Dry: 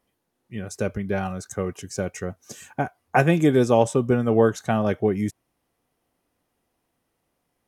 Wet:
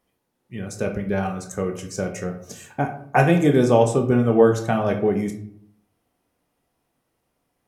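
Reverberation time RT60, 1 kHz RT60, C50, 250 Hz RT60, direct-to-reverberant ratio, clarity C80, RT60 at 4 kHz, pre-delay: 0.65 s, 0.60 s, 9.5 dB, 0.80 s, 4.0 dB, 13.0 dB, 0.40 s, 15 ms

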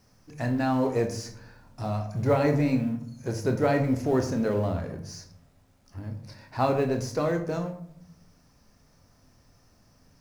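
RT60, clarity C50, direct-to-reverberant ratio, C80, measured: 0.65 s, 10.0 dB, 5.0 dB, 13.0 dB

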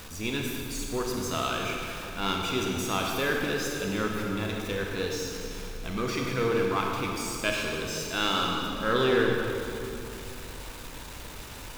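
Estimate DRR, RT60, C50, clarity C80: -0.5 dB, 2.7 s, 0.5 dB, 1.5 dB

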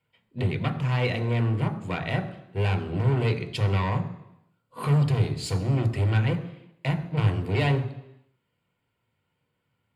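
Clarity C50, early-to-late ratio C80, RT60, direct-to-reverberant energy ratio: 13.0 dB, 14.5 dB, 0.85 s, 6.5 dB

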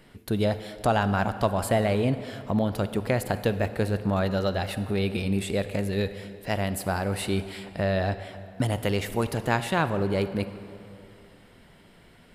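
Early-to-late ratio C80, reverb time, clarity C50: 13.0 dB, 2.7 s, 12.0 dB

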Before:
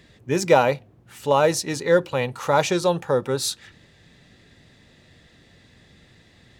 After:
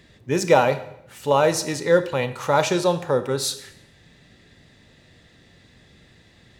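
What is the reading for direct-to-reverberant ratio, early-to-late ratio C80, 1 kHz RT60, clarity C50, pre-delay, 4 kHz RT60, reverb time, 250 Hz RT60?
11.0 dB, 16.0 dB, 0.70 s, 13.0 dB, 25 ms, 0.70 s, 0.75 s, 0.90 s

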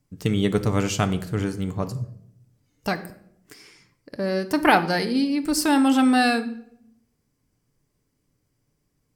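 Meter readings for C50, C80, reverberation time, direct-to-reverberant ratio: 14.0 dB, 17.0 dB, 0.70 s, 9.0 dB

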